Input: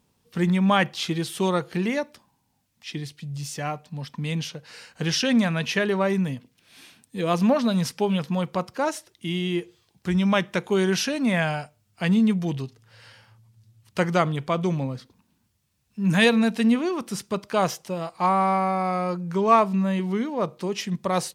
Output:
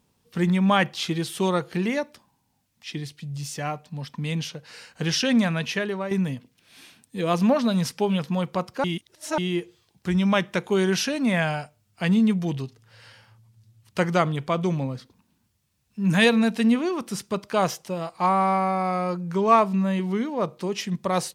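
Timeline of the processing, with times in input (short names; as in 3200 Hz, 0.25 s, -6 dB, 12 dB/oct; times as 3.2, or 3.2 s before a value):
5.51–6.11 fade out, to -9 dB
8.84–9.38 reverse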